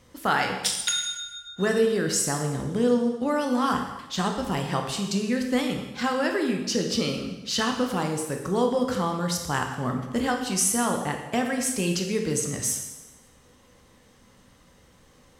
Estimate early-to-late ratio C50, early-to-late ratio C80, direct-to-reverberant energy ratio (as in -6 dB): 5.5 dB, 7.5 dB, 3.0 dB